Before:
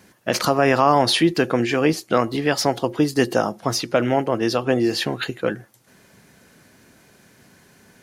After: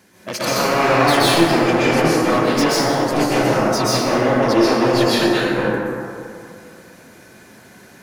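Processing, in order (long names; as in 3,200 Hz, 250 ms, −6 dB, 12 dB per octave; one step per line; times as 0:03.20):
wavefolder on the positive side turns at −17.5 dBFS
low-shelf EQ 94 Hz −9.5 dB
in parallel at −2 dB: brickwall limiter −13.5 dBFS, peak gain reduction 9.5 dB
on the sum: soft clipping −9.5 dBFS, distortion −14 dB
dense smooth reverb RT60 2.4 s, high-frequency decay 0.4×, pre-delay 110 ms, DRR −9.5 dB
level −6 dB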